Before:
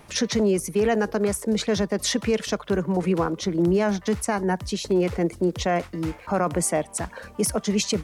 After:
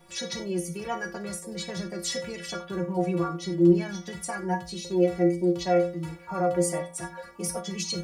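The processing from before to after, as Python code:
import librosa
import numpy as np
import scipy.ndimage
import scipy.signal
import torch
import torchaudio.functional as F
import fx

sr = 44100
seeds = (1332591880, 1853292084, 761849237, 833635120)

y = fx.stiff_resonator(x, sr, f0_hz=170.0, decay_s=0.38, stiffness=0.008)
y = fx.rev_gated(y, sr, seeds[0], gate_ms=120, shape='falling', drr_db=6.5)
y = F.gain(torch.from_numpy(y), 7.0).numpy()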